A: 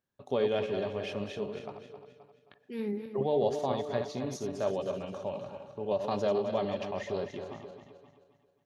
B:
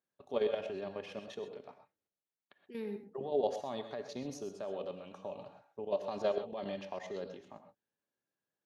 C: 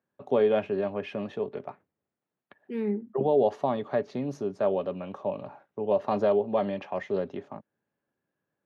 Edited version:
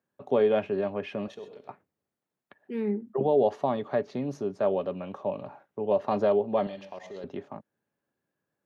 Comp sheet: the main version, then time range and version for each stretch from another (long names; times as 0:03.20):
C
0:01.28–0:01.69: punch in from B
0:06.67–0:07.24: punch in from B
not used: A